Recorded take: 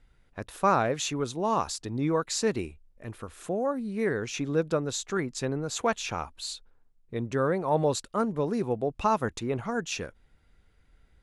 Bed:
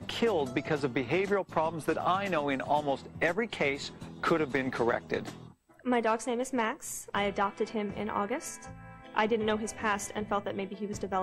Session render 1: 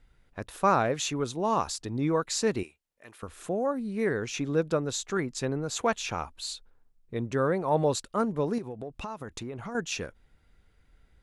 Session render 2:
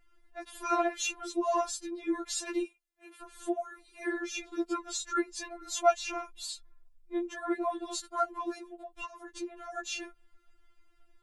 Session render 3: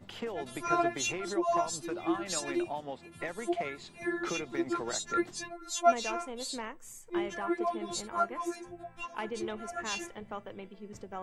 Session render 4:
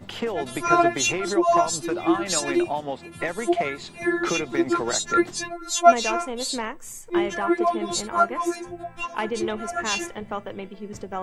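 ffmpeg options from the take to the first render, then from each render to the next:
-filter_complex "[0:a]asettb=1/sr,asplit=3[a][b][c];[a]atrim=end=2.634[d];[b]atrim=start=2.63:end=3.23,asetpts=PTS-STARTPTS,afade=t=in:d=0.004:c=qsin,afade=t=out:st=0.596:d=0.004:c=qsin,highpass=f=1.2k:p=1[e];[c]atrim=start=3.226[f];[d][e]acrossfade=d=0.004:c1=hsin:c2=qsin[g];[g][f]acrossfade=d=0.004:c1=qsin:c2=hsin,asettb=1/sr,asplit=3[h][i][j];[h]atrim=end=8.584[k];[i]atrim=start=8.58:end=9.75,asetpts=PTS-STARTPTS,afade=t=in:d=0.004:c=qsin,afade=t=out:st=1.166:d=0.004:c=qsin,acompressor=threshold=-33dB:ratio=12:attack=3.2:release=140:knee=1:detection=peak[l];[j]atrim=start=9.746[m];[k][l]acrossfade=d=0.004:c1=hsin:c2=qsin[n];[n][m]acrossfade=d=0.004:c1=qsin:c2=hsin"
-af "afftfilt=real='re*4*eq(mod(b,16),0)':imag='im*4*eq(mod(b,16),0)':win_size=2048:overlap=0.75"
-filter_complex "[1:a]volume=-10dB[a];[0:a][a]amix=inputs=2:normalize=0"
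-af "volume=10dB"

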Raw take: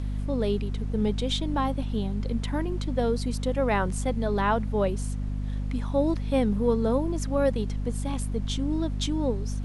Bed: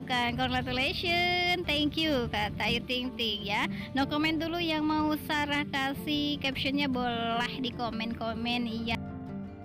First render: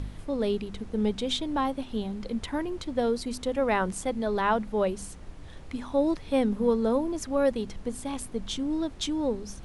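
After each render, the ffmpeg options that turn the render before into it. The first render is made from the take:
-af "bandreject=f=50:t=h:w=4,bandreject=f=100:t=h:w=4,bandreject=f=150:t=h:w=4,bandreject=f=200:t=h:w=4,bandreject=f=250:t=h:w=4"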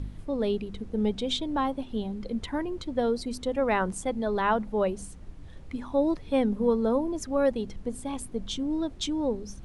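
-af "afftdn=nr=7:nf=-44"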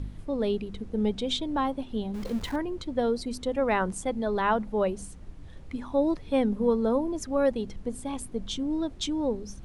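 -filter_complex "[0:a]asettb=1/sr,asplit=3[a][b][c];[a]atrim=end=2.144[d];[b]atrim=start=2.14:end=2.56,asetpts=PTS-STARTPTS,afade=t=in:d=0.004:c=qsin,afade=t=out:st=0.416:d=0.004:c=qsin,aeval=exprs='val(0)+0.5*0.0133*sgn(val(0))':c=same[e];[c]atrim=start=2.556[f];[d][e]acrossfade=d=0.004:c1=hsin:c2=qsin[g];[g][f]acrossfade=d=0.004:c1=qsin:c2=hsin"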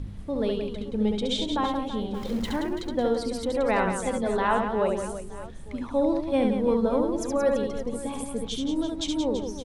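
-af "aecho=1:1:70|175|332.5|568.8|923.1:0.631|0.398|0.251|0.158|0.1"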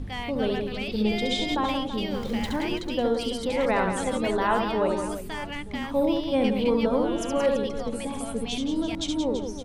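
-filter_complex "[1:a]volume=-6dB[a];[0:a][a]amix=inputs=2:normalize=0"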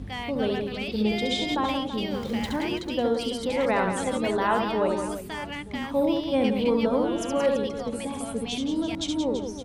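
-af "highpass=53"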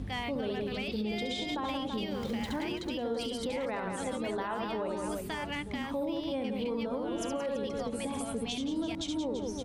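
-af "acompressor=threshold=-26dB:ratio=2,alimiter=level_in=1.5dB:limit=-24dB:level=0:latency=1:release=173,volume=-1.5dB"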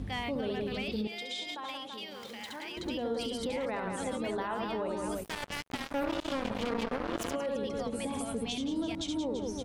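-filter_complex "[0:a]asettb=1/sr,asplit=3[a][b][c];[a]atrim=end=1.074[d];[b]atrim=start=1.07:end=2.77,asetpts=PTS-STARTPTS,afade=t=in:d=0.004:c=qsin,afade=t=out:st=1.696:d=0.004:c=qsin,highpass=f=1.3k:p=1[e];[c]atrim=start=2.766[f];[d][e]acrossfade=d=0.004:c1=hsin:c2=qsin[g];[g][f]acrossfade=d=0.004:c1=qsin:c2=hsin,asplit=3[h][i][j];[h]afade=t=out:st=5.23:d=0.02[k];[i]acrusher=bits=4:mix=0:aa=0.5,afade=t=in:st=5.23:d=0.02,afade=t=out:st=7.34:d=0.02[l];[j]afade=t=in:st=7.34:d=0.02[m];[k][l][m]amix=inputs=3:normalize=0"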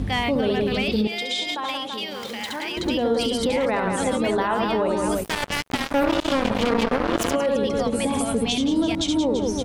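-af "volume=12dB"

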